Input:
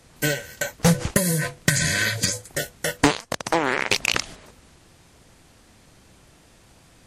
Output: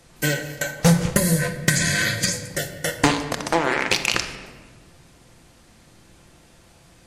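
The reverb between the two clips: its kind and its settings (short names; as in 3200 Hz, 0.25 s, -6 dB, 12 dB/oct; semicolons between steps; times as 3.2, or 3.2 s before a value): shoebox room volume 1300 m³, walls mixed, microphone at 0.84 m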